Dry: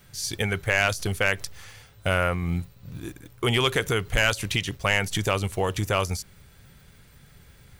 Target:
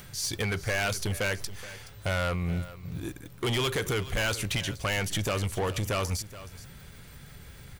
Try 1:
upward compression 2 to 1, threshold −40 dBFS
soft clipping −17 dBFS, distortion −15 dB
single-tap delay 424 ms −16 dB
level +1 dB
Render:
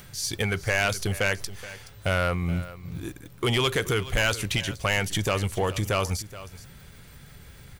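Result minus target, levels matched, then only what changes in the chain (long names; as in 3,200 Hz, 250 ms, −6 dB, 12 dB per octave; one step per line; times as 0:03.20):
soft clipping: distortion −7 dB
change: soft clipping −25 dBFS, distortion −7 dB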